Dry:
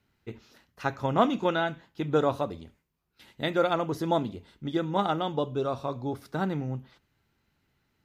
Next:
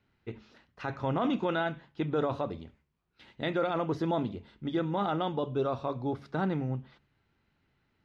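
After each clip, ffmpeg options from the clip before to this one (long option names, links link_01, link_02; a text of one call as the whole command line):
ffmpeg -i in.wav -af "lowpass=3800,bandreject=frequency=71.26:width_type=h:width=4,bandreject=frequency=142.52:width_type=h:width=4,bandreject=frequency=213.78:width_type=h:width=4,alimiter=limit=-20.5dB:level=0:latency=1:release=17" out.wav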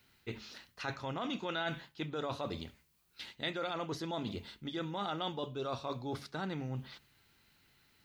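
ffmpeg -i in.wav -af "areverse,acompressor=threshold=-37dB:ratio=6,areverse,crystalizer=i=7:c=0,equalizer=frequency=4300:width_type=o:width=0.22:gain=3.5" out.wav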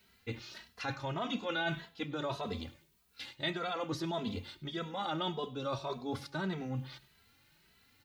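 ffmpeg -i in.wav -filter_complex "[0:a]aecho=1:1:100|200|300:0.0891|0.033|0.0122,asplit=2[link_01][link_02];[link_02]adelay=2.7,afreqshift=1.7[link_03];[link_01][link_03]amix=inputs=2:normalize=1,volume=4.5dB" out.wav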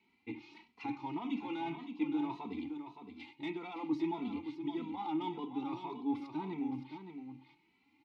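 ffmpeg -i in.wav -filter_complex "[0:a]asoftclip=type=tanh:threshold=-28.5dB,asplit=3[link_01][link_02][link_03];[link_01]bandpass=frequency=300:width_type=q:width=8,volume=0dB[link_04];[link_02]bandpass=frequency=870:width_type=q:width=8,volume=-6dB[link_05];[link_03]bandpass=frequency=2240:width_type=q:width=8,volume=-9dB[link_06];[link_04][link_05][link_06]amix=inputs=3:normalize=0,aecho=1:1:567:0.376,volume=10.5dB" out.wav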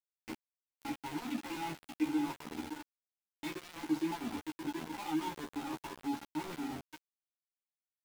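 ffmpeg -i in.wav -filter_complex "[0:a]aeval=exprs='val(0)*gte(abs(val(0)),0.0119)':channel_layout=same,asplit=2[link_01][link_02];[link_02]adelay=13,volume=-3dB[link_03];[link_01][link_03]amix=inputs=2:normalize=0,volume=-2dB" out.wav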